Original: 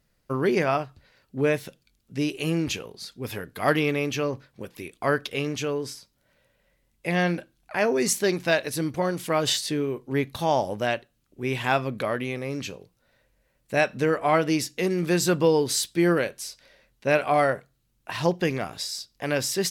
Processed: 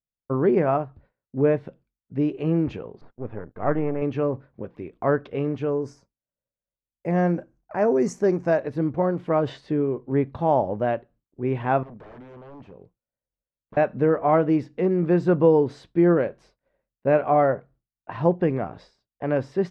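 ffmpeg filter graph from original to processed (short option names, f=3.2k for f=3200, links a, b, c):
-filter_complex "[0:a]asettb=1/sr,asplit=3[a][b][c];[a]atrim=end=3.014[d];[b]atrim=start=3.01:end=4.02,asetpts=PTS-STARTPTS,afade=t=in:d=0.004:c=qsin,afade=t=out:st=1.006:d=0.004:c=qsin,aeval=exprs='if(lt(val(0),0),0.251*val(0),val(0))':c=same,lowpass=1.9k,agate=range=-14dB:threshold=-54dB:ratio=16:release=100:detection=peak[e];[c]atrim=start=4.016[f];[d][e]acrossfade=d=0.004:c1=hsin:c2=qsin[g];[g][f]acrossfade=d=0.004:c1=qsin:c2=hsin,asettb=1/sr,asplit=3[h][i][j];[h]atrim=end=5.694[k];[i]atrim=start=5.69:end=8.63,asetpts=PTS-STARTPTS,afade=t=in:d=0.004:c=qsin,afade=t=out:st=2.936:d=0.004:c=qsin,deesser=0.25,highshelf=f=4.8k:t=q:w=3:g=10.5[l];[j]atrim=start=8.626[m];[k][l]acrossfade=d=0.004:c1=hsin:c2=qsin[n];[n][m]acrossfade=d=0.004:c1=qsin:c2=hsin,asettb=1/sr,asplit=3[o][p][q];[o]atrim=end=11.834[r];[p]atrim=start=11.83:end=13.77,asetpts=PTS-STARTPTS,afade=t=in:d=0.004:c=qsin,afade=t=out:st=1.936:d=0.004:c=qsin,aeval=exprs='0.0282*(abs(mod(val(0)/0.0282+3,4)-2)-1)':c=same,acompressor=threshold=-43dB:ratio=6:attack=3.2:release=140:knee=1:detection=peak[s];[q]atrim=start=13.766[t];[r][s]acrossfade=d=0.004:c1=hsin:c2=qsin[u];[u][t]acrossfade=d=0.004:c1=qsin:c2=hsin,lowpass=1k,agate=range=-33dB:threshold=-50dB:ratio=3:detection=peak,volume=3.5dB"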